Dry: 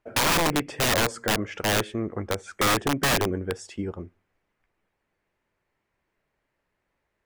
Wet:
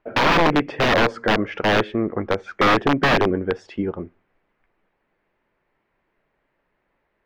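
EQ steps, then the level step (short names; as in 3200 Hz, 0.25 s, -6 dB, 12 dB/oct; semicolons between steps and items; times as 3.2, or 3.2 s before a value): air absorption 280 m; bell 77 Hz -9.5 dB 1.4 oct; +8.5 dB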